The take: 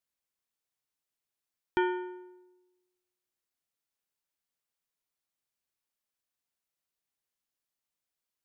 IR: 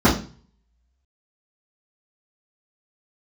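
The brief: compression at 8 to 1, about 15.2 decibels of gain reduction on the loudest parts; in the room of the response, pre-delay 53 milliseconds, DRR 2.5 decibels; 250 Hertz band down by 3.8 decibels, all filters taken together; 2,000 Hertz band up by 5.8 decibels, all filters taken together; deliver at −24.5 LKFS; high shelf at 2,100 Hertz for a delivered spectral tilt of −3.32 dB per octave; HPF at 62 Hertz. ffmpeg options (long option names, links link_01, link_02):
-filter_complex "[0:a]highpass=62,equalizer=frequency=250:width_type=o:gain=-8.5,equalizer=frequency=2000:width_type=o:gain=5.5,highshelf=frequency=2100:gain=5.5,acompressor=threshold=-38dB:ratio=8,asplit=2[link_01][link_02];[1:a]atrim=start_sample=2205,adelay=53[link_03];[link_02][link_03]afir=irnorm=-1:irlink=0,volume=-24.5dB[link_04];[link_01][link_04]amix=inputs=2:normalize=0,volume=17dB"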